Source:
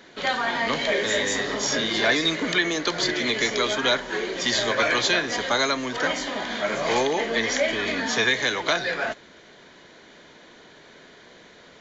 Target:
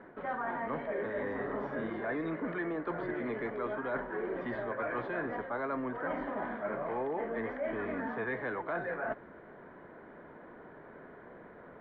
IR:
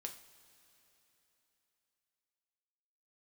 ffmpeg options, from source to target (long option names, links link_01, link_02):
-af "lowpass=frequency=1500:width=0.5412,lowpass=frequency=1500:width=1.3066,areverse,acompressor=threshold=-33dB:ratio=6,areverse"